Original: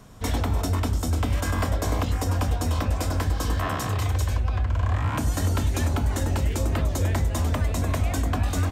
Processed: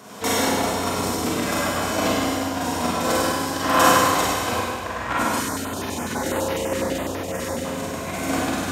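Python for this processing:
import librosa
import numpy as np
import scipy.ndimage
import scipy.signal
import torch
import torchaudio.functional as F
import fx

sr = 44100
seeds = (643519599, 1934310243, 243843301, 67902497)

y = fx.echo_feedback(x, sr, ms=97, feedback_pct=42, wet_db=-3.5)
y = fx.over_compress(y, sr, threshold_db=-26.0, ratio=-0.5)
y = scipy.signal.sosfilt(scipy.signal.butter(2, 280.0, 'highpass', fs=sr, output='sos'), y)
y = fx.rev_schroeder(y, sr, rt60_s=1.7, comb_ms=33, drr_db=-6.5)
y = fx.filter_held_notch(y, sr, hz=12.0, low_hz=750.0, high_hz=7800.0, at=(5.4, 7.65))
y = y * librosa.db_to_amplitude(2.5)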